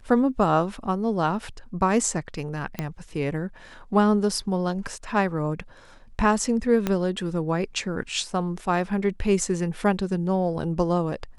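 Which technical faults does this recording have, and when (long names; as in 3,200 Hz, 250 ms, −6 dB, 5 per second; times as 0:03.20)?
0:02.79: click −14 dBFS
0:06.87: click −10 dBFS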